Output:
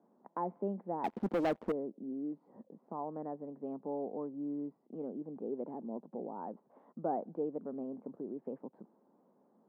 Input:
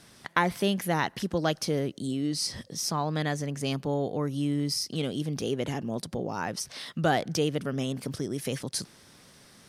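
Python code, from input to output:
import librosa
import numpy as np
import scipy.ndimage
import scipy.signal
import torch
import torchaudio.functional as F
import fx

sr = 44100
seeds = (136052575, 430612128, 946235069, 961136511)

y = scipy.signal.sosfilt(scipy.signal.ellip(3, 1.0, 70, [210.0, 930.0], 'bandpass', fs=sr, output='sos'), x)
y = fx.leveller(y, sr, passes=3, at=(1.04, 1.72))
y = F.gain(torch.from_numpy(y), -8.0).numpy()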